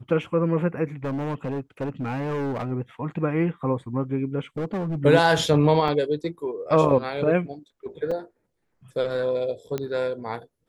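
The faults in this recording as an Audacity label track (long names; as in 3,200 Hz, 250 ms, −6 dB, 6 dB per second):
1.040000	2.710000	clipping −24.5 dBFS
4.580000	4.960000	clipping −24 dBFS
5.880000	5.880000	drop-out 3.6 ms
8.110000	8.110000	drop-out 4.5 ms
9.780000	9.780000	click −15 dBFS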